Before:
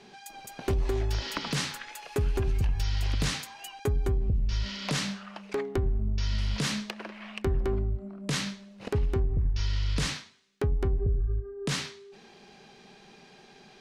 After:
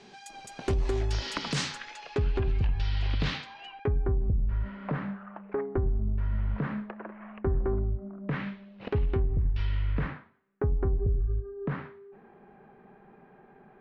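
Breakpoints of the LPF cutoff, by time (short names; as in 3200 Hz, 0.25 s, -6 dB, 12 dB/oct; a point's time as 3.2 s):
LPF 24 dB/oct
1.52 s 9000 Hz
2.39 s 4000 Hz
3.57 s 4000 Hz
4.08 s 1600 Hz
8.17 s 1600 Hz
8.79 s 3500 Hz
9.49 s 3500 Hz
10.17 s 1600 Hz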